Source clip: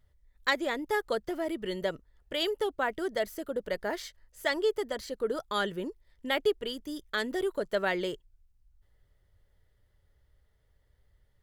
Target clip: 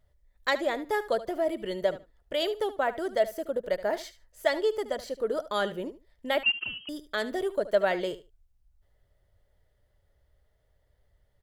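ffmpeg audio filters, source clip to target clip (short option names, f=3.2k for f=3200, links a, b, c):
-filter_complex "[0:a]equalizer=f=640:w=2.4:g=8.5,asplit=2[a][b];[b]aecho=0:1:74|148:0.178|0.0285[c];[a][c]amix=inputs=2:normalize=0,asettb=1/sr,asplit=3[d][e][f];[d]atrim=end=6.434[g];[e]atrim=start=6.43:end=6.89,asetpts=PTS-STARTPTS,afade=t=in:d=0.004:c=qsin,afade=t=out:st=0.456:d=0.004:c=qsin,lowpass=f=2.7k:t=q:w=0.5098,lowpass=f=2.7k:t=q:w=0.6013,lowpass=f=2.7k:t=q:w=0.9,lowpass=f=2.7k:t=q:w=2.563,afreqshift=-3200[h];[f]atrim=start=6.886[i];[g][h]acrossfade=d=0.004:c1=hsin:c2=qsin[j];[j][i]acrossfade=d=0.004:c1=qsin:c2=hsin,volume=-1dB"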